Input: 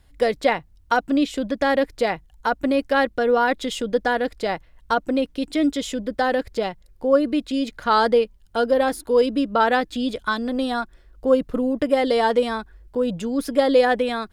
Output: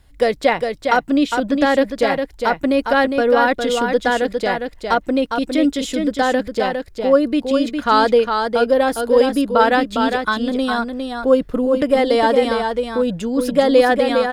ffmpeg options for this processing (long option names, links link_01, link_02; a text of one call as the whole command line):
ffmpeg -i in.wav -af "aecho=1:1:407:0.531,volume=3.5dB" out.wav